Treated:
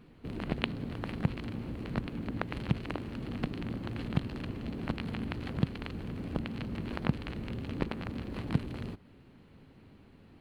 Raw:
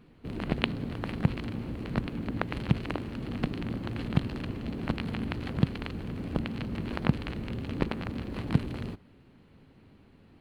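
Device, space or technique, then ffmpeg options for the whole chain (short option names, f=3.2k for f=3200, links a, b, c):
parallel compression: -filter_complex "[0:a]asplit=2[a][b];[b]acompressor=threshold=-42dB:ratio=6,volume=-1dB[c];[a][c]amix=inputs=2:normalize=0,volume=-5dB"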